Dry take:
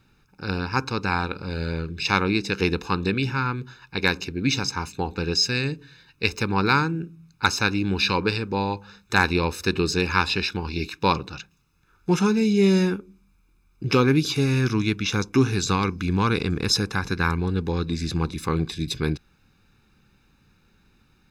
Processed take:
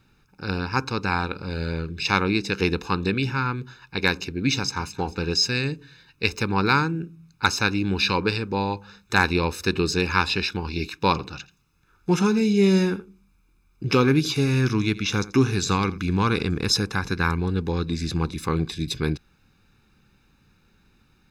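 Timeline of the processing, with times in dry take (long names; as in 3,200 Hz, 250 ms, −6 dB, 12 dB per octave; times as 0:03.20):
0:04.54–0:04.95: delay throw 220 ms, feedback 40%, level −15.5 dB
0:11.10–0:16.44: single-tap delay 84 ms −18.5 dB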